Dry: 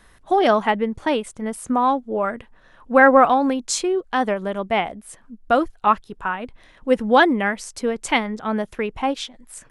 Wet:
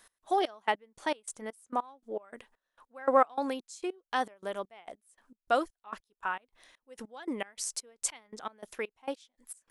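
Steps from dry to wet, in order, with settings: step gate "x..xxx...x...x" 200 bpm -24 dB; tone controls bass -15 dB, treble +10 dB; gain -8.5 dB

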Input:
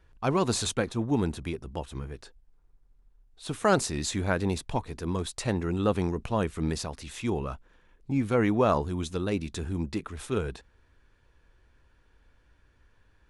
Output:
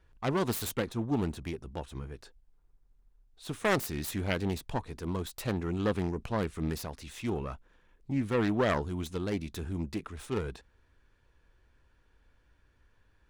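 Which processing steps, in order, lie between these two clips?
self-modulated delay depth 0.34 ms; gain -3.5 dB

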